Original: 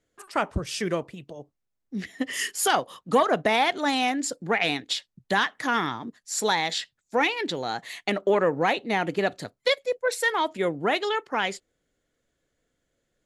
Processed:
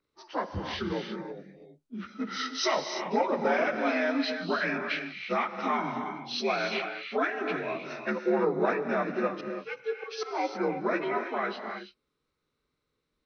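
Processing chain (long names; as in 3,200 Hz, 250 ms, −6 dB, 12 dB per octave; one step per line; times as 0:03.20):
partials spread apart or drawn together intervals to 83%
0:09.32–0:10.31: volume swells 172 ms
reverb whose tail is shaped and stops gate 360 ms rising, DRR 5 dB
level −3 dB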